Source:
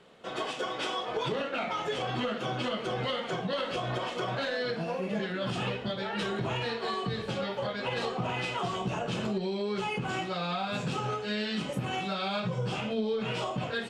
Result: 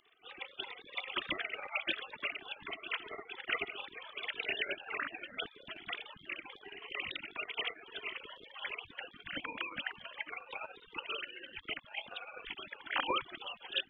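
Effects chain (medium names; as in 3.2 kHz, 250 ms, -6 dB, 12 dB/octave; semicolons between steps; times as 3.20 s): formants replaced by sine waves; spectral gate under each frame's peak -30 dB weak; trim +17.5 dB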